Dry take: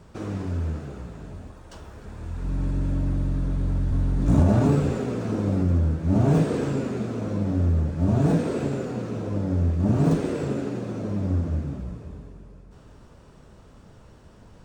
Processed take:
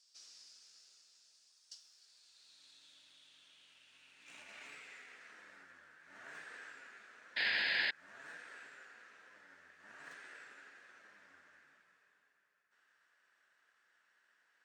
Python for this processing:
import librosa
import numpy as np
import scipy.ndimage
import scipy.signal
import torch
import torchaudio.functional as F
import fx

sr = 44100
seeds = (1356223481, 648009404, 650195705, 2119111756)

p1 = fx.spec_paint(x, sr, seeds[0], shape='noise', start_s=7.36, length_s=0.55, low_hz=1600.0, high_hz=5100.0, level_db=-22.0)
p2 = np.diff(p1, prepend=0.0)
p3 = fx.sample_hold(p2, sr, seeds[1], rate_hz=1200.0, jitter_pct=0)
p4 = p2 + F.gain(torch.from_numpy(p3), -5.5).numpy()
p5 = fx.filter_sweep_bandpass(p4, sr, from_hz=5000.0, to_hz=1700.0, start_s=1.85, end_s=5.63, q=4.5)
y = F.gain(torch.from_numpy(p5), 7.0).numpy()